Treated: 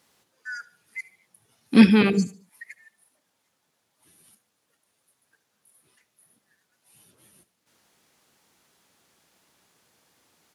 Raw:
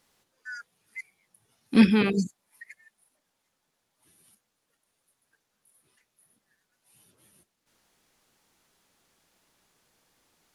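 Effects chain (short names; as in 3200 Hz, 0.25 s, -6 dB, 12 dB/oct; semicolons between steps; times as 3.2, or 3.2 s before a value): HPF 74 Hz; on a send: feedback echo 74 ms, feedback 41%, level -20 dB; on the sum: gain +4 dB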